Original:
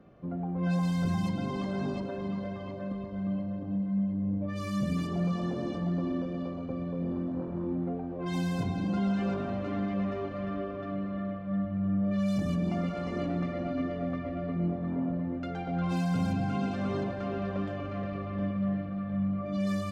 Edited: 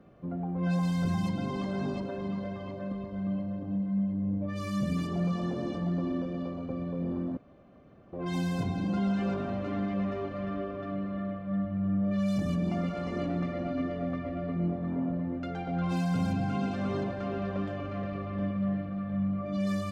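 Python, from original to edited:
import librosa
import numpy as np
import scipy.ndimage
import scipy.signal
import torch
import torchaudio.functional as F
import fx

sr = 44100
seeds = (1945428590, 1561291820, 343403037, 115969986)

y = fx.edit(x, sr, fx.room_tone_fill(start_s=7.37, length_s=0.76), tone=tone)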